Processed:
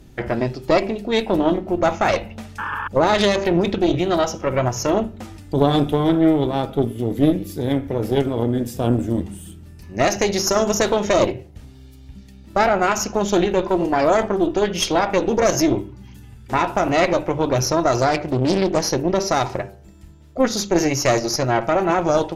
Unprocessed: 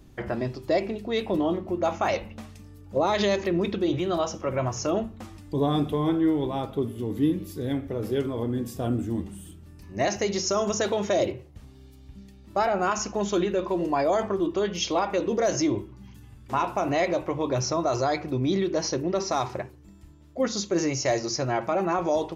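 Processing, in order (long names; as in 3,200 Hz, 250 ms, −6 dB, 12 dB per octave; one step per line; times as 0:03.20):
notch filter 1,100 Hz, Q 7.2
hum removal 98.61 Hz, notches 16
0:02.58–0:02.88: sound drawn into the spectrogram noise 820–1,800 Hz −33 dBFS
harmonic generator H 2 −8 dB, 6 −29 dB, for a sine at −12.5 dBFS
0:18.01–0:18.83: highs frequency-modulated by the lows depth 0.52 ms
level +6.5 dB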